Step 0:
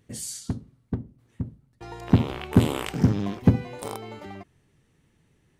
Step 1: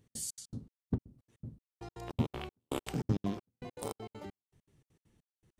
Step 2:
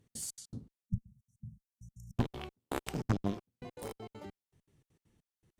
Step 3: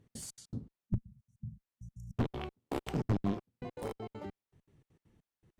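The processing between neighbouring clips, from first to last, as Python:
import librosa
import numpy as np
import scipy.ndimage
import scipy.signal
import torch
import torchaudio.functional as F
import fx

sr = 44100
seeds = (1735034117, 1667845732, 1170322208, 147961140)

y1 = fx.peak_eq(x, sr, hz=1900.0, db=-5.5, octaves=1.6)
y1 = fx.step_gate(y1, sr, bpm=199, pattern='x.xx.x.xx...', floor_db=-60.0, edge_ms=4.5)
y1 = y1 * 10.0 ** (-4.0 / 20.0)
y2 = fx.cheby_harmonics(y1, sr, harmonics=(6, 8), levels_db=(-8, -13), full_scale_db=-17.5)
y2 = fx.spec_erase(y2, sr, start_s=0.85, length_s=1.32, low_hz=230.0, high_hz=5400.0)
y2 = y2 * 10.0 ** (-1.5 / 20.0)
y3 = fx.high_shelf(y2, sr, hz=3700.0, db=-11.0)
y3 = np.clip(10.0 ** (27.5 / 20.0) * y3, -1.0, 1.0) / 10.0 ** (27.5 / 20.0)
y3 = y3 * 10.0 ** (4.0 / 20.0)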